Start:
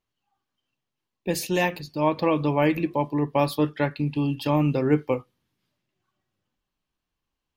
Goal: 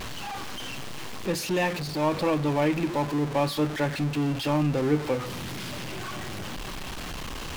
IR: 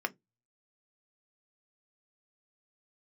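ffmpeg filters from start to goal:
-af "aeval=exprs='val(0)+0.5*0.075*sgn(val(0))':channel_layout=same,highshelf=frequency=8500:gain=-9.5,volume=-5dB"

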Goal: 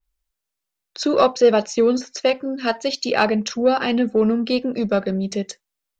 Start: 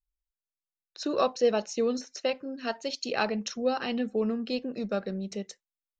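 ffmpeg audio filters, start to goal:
ffmpeg -i in.wav -filter_complex "[0:a]asplit=2[link_01][link_02];[link_02]asoftclip=type=tanh:threshold=-24.5dB,volume=-6.5dB[link_03];[link_01][link_03]amix=inputs=2:normalize=0,adynamicequalizer=threshold=0.00501:dfrequency=3500:dqfactor=0.7:tfrequency=3500:tqfactor=0.7:attack=5:release=100:ratio=0.375:range=2.5:mode=cutabove:tftype=highshelf,volume=8dB" out.wav

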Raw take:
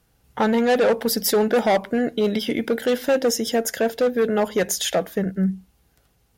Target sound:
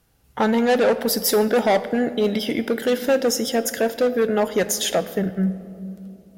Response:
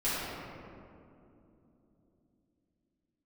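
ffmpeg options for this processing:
-filter_complex "[0:a]asplit=2[link_01][link_02];[1:a]atrim=start_sample=2205,highshelf=frequency=4500:gain=12[link_03];[link_02][link_03]afir=irnorm=-1:irlink=0,volume=-24dB[link_04];[link_01][link_04]amix=inputs=2:normalize=0"

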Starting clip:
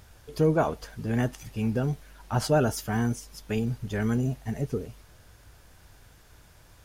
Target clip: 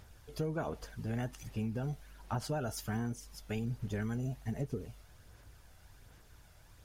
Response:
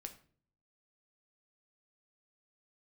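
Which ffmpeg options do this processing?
-af "aphaser=in_gain=1:out_gain=1:delay=1.5:decay=0.32:speed=1.3:type=sinusoidal,acompressor=threshold=-25dB:ratio=10,volume=-6.5dB"

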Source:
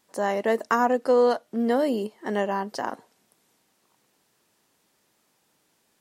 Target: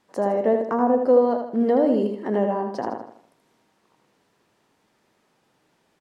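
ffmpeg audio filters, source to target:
ffmpeg -i in.wav -filter_complex "[0:a]aemphasis=mode=reproduction:type=75kf,acrossover=split=850[link_01][link_02];[link_02]acompressor=threshold=-44dB:ratio=10[link_03];[link_01][link_03]amix=inputs=2:normalize=0,aecho=1:1:79|158|237|316|395:0.501|0.205|0.0842|0.0345|0.0142,volume=4.5dB" out.wav

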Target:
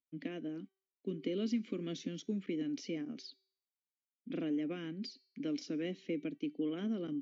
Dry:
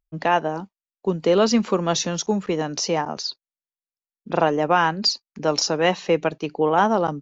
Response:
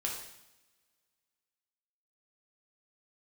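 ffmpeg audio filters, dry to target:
-filter_complex "[0:a]asplit=3[link_01][link_02][link_03];[link_01]bandpass=frequency=270:width_type=q:width=8,volume=0dB[link_04];[link_02]bandpass=frequency=2290:width_type=q:width=8,volume=-6dB[link_05];[link_03]bandpass=frequency=3010:width_type=q:width=8,volume=-9dB[link_06];[link_04][link_05][link_06]amix=inputs=3:normalize=0,acrossover=split=770|5100[link_07][link_08][link_09];[link_07]acompressor=threshold=-33dB:ratio=4[link_10];[link_08]acompressor=threshold=-54dB:ratio=4[link_11];[link_09]acompressor=threshold=-52dB:ratio=4[link_12];[link_10][link_11][link_12]amix=inputs=3:normalize=0,bandreject=frequency=384.2:width_type=h:width=4,bandreject=frequency=768.4:width_type=h:width=4,bandreject=frequency=1152.6:width_type=h:width=4,bandreject=frequency=1536.8:width_type=h:width=4,bandreject=frequency=1921:width_type=h:width=4,bandreject=frequency=2305.2:width_type=h:width=4,bandreject=frequency=2689.4:width_type=h:width=4,bandreject=frequency=3073.6:width_type=h:width=4,bandreject=frequency=3457.8:width_type=h:width=4,bandreject=frequency=3842:width_type=h:width=4,bandreject=frequency=4226.2:width_type=h:width=4,bandreject=frequency=4610.4:width_type=h:width=4,bandreject=frequency=4994.6:width_type=h:width=4,bandreject=frequency=5378.8:width_type=h:width=4,bandreject=frequency=5763:width_type=h:width=4,bandreject=frequency=6147.2:width_type=h:width=4,bandreject=frequency=6531.4:width_type=h:width=4,bandreject=frequency=6915.6:width_type=h:width=4,bandreject=frequency=7299.8:width_type=h:width=4,bandreject=frequency=7684:width_type=h:width=4,bandreject=frequency=8068.2:width_type=h:width=4,bandreject=frequency=8452.4:width_type=h:width=4,bandreject=frequency=8836.6:width_type=h:width=4,bandreject=frequency=9220.8:width_type=h:width=4,bandreject=frequency=9605:width_type=h:width=4,bandreject=frequency=9989.2:width_type=h:width=4,bandreject=frequency=10373.4:width_type=h:width=4,bandreject=frequency=10757.6:width_type=h:width=4,bandreject=frequency=11141.8:width_type=h:width=4,bandreject=frequency=11526:width_type=h:width=4,volume=1dB"

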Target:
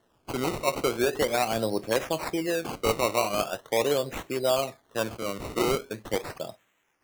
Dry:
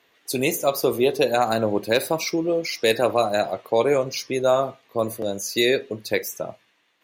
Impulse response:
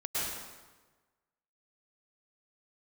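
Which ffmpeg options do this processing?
-af "acrusher=samples=18:mix=1:aa=0.000001:lfo=1:lforange=18:lforate=0.41,volume=-5.5dB"

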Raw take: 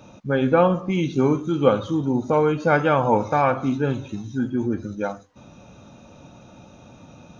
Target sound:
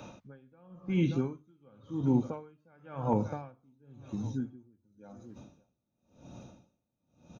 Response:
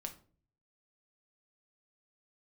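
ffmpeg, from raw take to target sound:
-filter_complex "[0:a]asetnsamples=nb_out_samples=441:pad=0,asendcmd='3.13 equalizer g -8',equalizer=frequency=1700:width_type=o:width=2.7:gain=2,aecho=1:1:578|1156|1734:0.0631|0.0259|0.0106,acrossover=split=230[link_01][link_02];[link_02]acompressor=threshold=-42dB:ratio=1.5[link_03];[link_01][link_03]amix=inputs=2:normalize=0,bandreject=frequency=50:width_type=h:width=6,bandreject=frequency=100:width_type=h:width=6,bandreject=frequency=150:width_type=h:width=6,acrossover=split=2900[link_04][link_05];[link_05]acompressor=threshold=-51dB:ratio=4:attack=1:release=60[link_06];[link_04][link_06]amix=inputs=2:normalize=0,aeval=exprs='val(0)*pow(10,-38*(0.5-0.5*cos(2*PI*0.94*n/s))/20)':channel_layout=same"

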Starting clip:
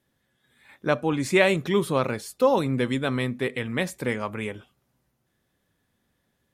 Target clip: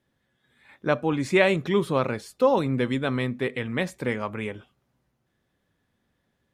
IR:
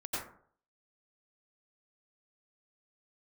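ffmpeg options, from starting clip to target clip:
-af "highshelf=frequency=7300:gain=-11.5"

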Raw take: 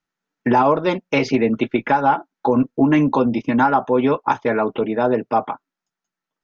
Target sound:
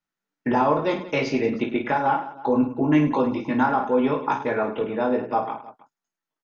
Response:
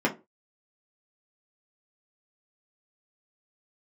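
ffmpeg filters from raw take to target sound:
-af "aecho=1:1:20|52|103.2|185.1|316.2:0.631|0.398|0.251|0.158|0.1,volume=-6.5dB"

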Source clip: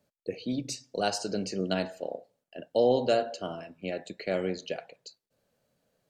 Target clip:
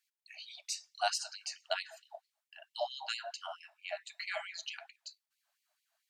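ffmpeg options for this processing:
ffmpeg -i in.wav -filter_complex "[0:a]asettb=1/sr,asplit=3[link_01][link_02][link_03];[link_01]atrim=end=4.084[link_04];[link_02]atrim=start=4.08:end=4.76,asetpts=PTS-STARTPTS,afade=type=in:duration=0.004:curve=qsin,afade=type=out:start_time=0.676:duration=0.004:curve=qsin,aecho=1:1:5.9:0.9,atrim=end_sample=29988[link_05];[link_03]atrim=start=4.756[link_06];[link_04][link_05]acrossfade=duration=0.004:curve1=hsin:curve2=qsin[link_07];[link_07][link_06]acrossfade=duration=0.004:curve1=qsin:curve2=hsin,afftfilt=real='re*gte(b*sr/1024,580*pow(2000/580,0.5+0.5*sin(2*PI*4.5*pts/sr)))':imag='im*gte(b*sr/1024,580*pow(2000/580,0.5+0.5*sin(2*PI*4.5*pts/sr)))':win_size=1024:overlap=0.75,volume=-1dB" out.wav

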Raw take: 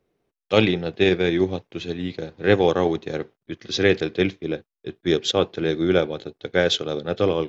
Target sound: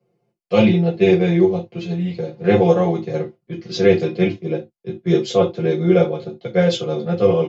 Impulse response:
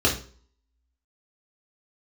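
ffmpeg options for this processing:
-filter_complex "[0:a]aecho=1:1:5.7:0.81[link_01];[1:a]atrim=start_sample=2205,atrim=end_sample=6615,asetrate=74970,aresample=44100[link_02];[link_01][link_02]afir=irnorm=-1:irlink=0,volume=-14dB"

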